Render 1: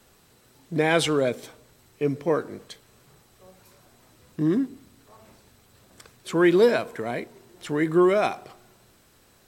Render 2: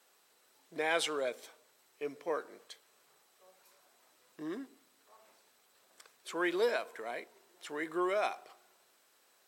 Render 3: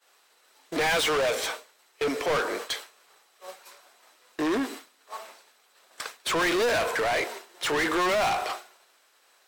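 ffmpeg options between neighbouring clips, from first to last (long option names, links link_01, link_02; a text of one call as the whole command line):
ffmpeg -i in.wav -af "highpass=540,volume=-8dB" out.wav
ffmpeg -i in.wav -filter_complex "[0:a]agate=range=-33dB:threshold=-55dB:ratio=3:detection=peak,asplit=2[link_01][link_02];[link_02]highpass=frequency=720:poles=1,volume=36dB,asoftclip=type=tanh:threshold=-18dB[link_03];[link_01][link_03]amix=inputs=2:normalize=0,lowpass=frequency=5300:poles=1,volume=-6dB" out.wav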